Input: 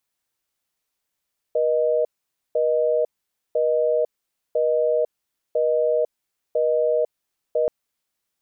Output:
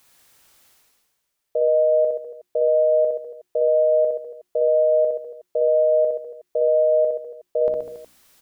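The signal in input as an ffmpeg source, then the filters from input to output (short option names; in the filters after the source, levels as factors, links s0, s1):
-f lavfi -i "aevalsrc='0.1*(sin(2*PI*480*t)+sin(2*PI*620*t))*clip(min(mod(t,1),0.5-mod(t,1))/0.005,0,1)':d=6.13:s=44100"
-af "bandreject=f=60:t=h:w=6,bandreject=f=120:t=h:w=6,bandreject=f=180:t=h:w=6,bandreject=f=240:t=h:w=6,bandreject=f=300:t=h:w=6,bandreject=f=360:t=h:w=6,areverse,acompressor=mode=upward:threshold=0.01:ratio=2.5,areverse,aecho=1:1:60|126|198.6|278.5|366.3:0.631|0.398|0.251|0.158|0.1"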